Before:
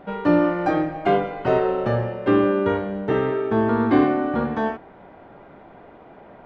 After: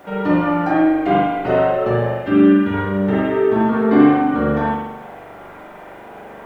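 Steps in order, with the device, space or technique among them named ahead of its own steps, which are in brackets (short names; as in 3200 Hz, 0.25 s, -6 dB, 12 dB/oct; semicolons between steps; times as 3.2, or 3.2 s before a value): noise-reduction cassette on a plain deck (mismatched tape noise reduction encoder only; wow and flutter 18 cents; white noise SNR 39 dB); 2.13–2.74 band shelf 640 Hz -9.5 dB; spring tank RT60 1 s, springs 41 ms, chirp 70 ms, DRR -6 dB; gain -2.5 dB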